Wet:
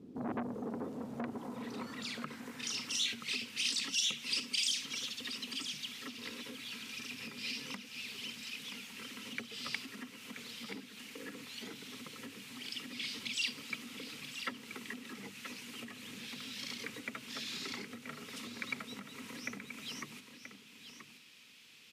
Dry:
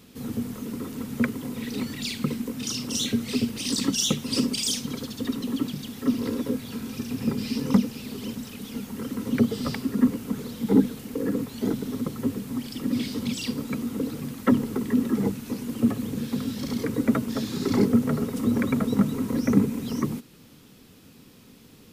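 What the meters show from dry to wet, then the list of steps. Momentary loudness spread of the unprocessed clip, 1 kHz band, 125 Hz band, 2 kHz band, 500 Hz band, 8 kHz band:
10 LU, −10.5 dB, −24.0 dB, −2.0 dB, −18.0 dB, −8.0 dB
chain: bass and treble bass +8 dB, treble +10 dB
downward compressor 6 to 1, threshold −20 dBFS, peak gain reduction 12 dB
band-pass filter sweep 340 Hz → 2,500 Hz, 0:00.11–0:03.06
single-tap delay 979 ms −10 dB
saturating transformer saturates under 1,400 Hz
level +2.5 dB

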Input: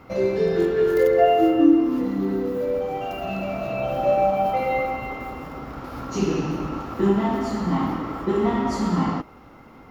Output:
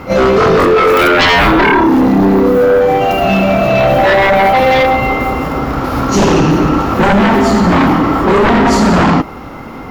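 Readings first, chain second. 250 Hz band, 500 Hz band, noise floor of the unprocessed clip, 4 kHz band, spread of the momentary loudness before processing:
+11.5 dB, +11.0 dB, −47 dBFS, +21.0 dB, 15 LU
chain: echo ahead of the sound 30 ms −14 dB
sine wavefolder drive 15 dB, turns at −5.5 dBFS

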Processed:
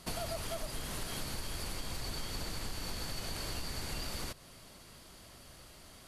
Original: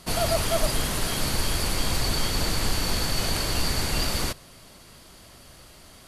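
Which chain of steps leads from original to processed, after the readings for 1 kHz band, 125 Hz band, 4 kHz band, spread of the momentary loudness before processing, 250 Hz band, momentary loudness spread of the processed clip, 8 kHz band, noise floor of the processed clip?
−14.0 dB, −14.0 dB, −14.0 dB, 2 LU, −13.5 dB, 15 LU, −14.0 dB, −55 dBFS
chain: downward compressor 6 to 1, threshold −30 dBFS, peak gain reduction 12.5 dB
level −5.5 dB

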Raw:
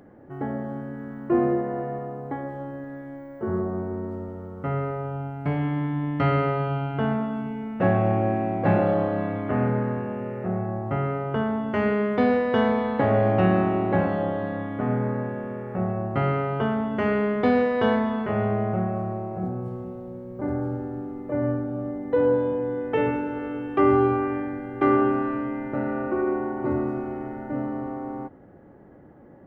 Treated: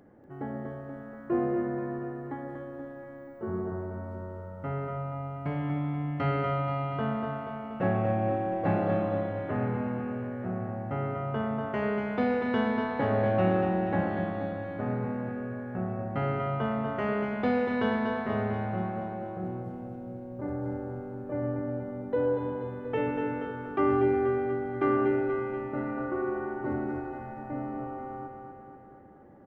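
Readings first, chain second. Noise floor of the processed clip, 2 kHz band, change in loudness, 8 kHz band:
−45 dBFS, −4.5 dB, −5.5 dB, can't be measured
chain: repeating echo 240 ms, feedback 60%, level −5.5 dB
level −6.5 dB

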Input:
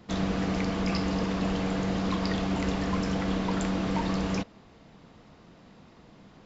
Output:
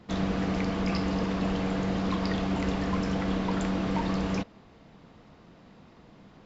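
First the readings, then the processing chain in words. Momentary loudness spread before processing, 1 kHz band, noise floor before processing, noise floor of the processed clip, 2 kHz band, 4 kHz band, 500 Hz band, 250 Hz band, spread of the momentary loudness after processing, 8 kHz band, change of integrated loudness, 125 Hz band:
1 LU, 0.0 dB, −55 dBFS, −55 dBFS, −0.5 dB, −2.0 dB, 0.0 dB, 0.0 dB, 1 LU, can't be measured, 0.0 dB, 0.0 dB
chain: high-shelf EQ 6,300 Hz −7.5 dB

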